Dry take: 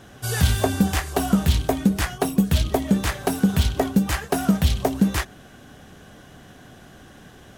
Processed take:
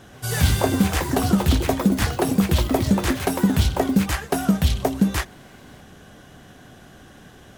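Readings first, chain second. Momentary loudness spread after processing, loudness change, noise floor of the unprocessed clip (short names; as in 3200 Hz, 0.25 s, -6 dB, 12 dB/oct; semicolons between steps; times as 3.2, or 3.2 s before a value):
3 LU, +1.0 dB, -47 dBFS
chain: echoes that change speed 0.134 s, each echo +5 st, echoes 3, each echo -6 dB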